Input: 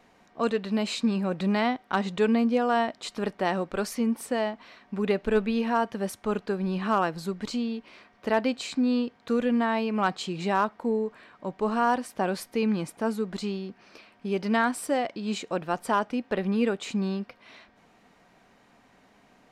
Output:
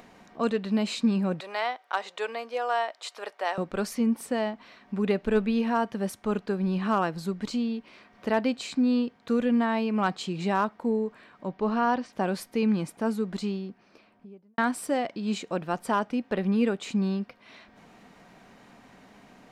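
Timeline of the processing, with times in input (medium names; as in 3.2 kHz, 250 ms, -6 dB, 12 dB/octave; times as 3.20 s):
1.40–3.58 s: high-pass 520 Hz 24 dB/octave
11.47–12.13 s: low-pass 5.7 kHz 24 dB/octave
13.35–14.58 s: studio fade out
whole clip: peaking EQ 190 Hz +3.5 dB 1.2 oct; upward compressor, threshold -43 dBFS; trim -1.5 dB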